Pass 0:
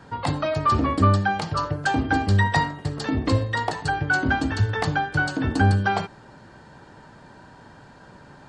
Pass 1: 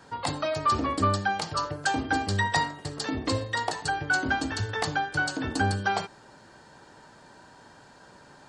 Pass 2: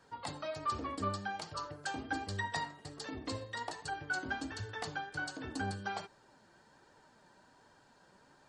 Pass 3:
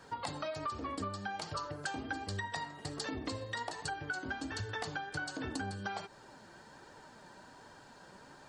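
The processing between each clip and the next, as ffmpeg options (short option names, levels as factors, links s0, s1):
-af "bass=f=250:g=-7,treble=f=4000:g=8,volume=0.668"
-af "flanger=delay=1.6:depth=4.4:regen=62:speed=1.3:shape=triangular,volume=0.422"
-af "acompressor=threshold=0.00631:ratio=10,volume=2.66"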